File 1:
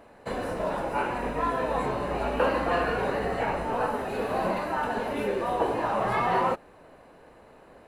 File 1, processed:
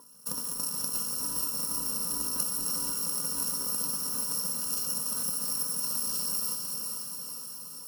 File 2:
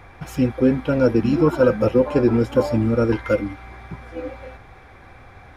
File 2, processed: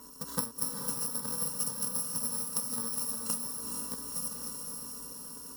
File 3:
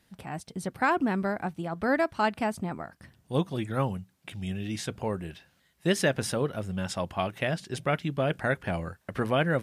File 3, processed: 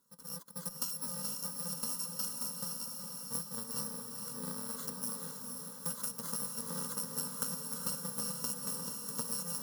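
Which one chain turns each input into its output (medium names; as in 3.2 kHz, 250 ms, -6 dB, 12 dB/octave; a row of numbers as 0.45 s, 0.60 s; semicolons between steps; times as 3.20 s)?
bit-reversed sample order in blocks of 128 samples; high-pass 190 Hz 6 dB/octave; compression 12:1, threshold -30 dBFS; Chebyshev shaper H 3 -12 dB, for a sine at -16.5 dBFS; static phaser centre 480 Hz, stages 8; small resonant body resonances 300/990 Hz, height 18 dB, ringing for 70 ms; on a send: echo that smears into a reverb 461 ms, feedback 63%, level -4 dB; on the sum: peak normalisation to -12 dBFS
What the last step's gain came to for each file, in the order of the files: +11.5 dB, +9.0 dB, +6.0 dB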